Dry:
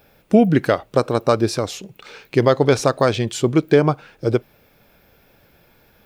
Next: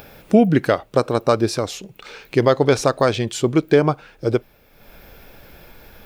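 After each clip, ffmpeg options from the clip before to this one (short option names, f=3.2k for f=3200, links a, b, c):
-af "asubboost=boost=3:cutoff=58,acompressor=mode=upward:threshold=-33dB:ratio=2.5"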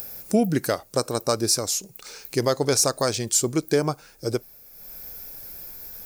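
-af "aexciter=amount=6.4:drive=7:freq=4.7k,volume=-7dB"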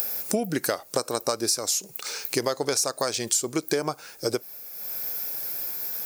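-af "highpass=f=460:p=1,acompressor=threshold=-30dB:ratio=6,volume=8dB"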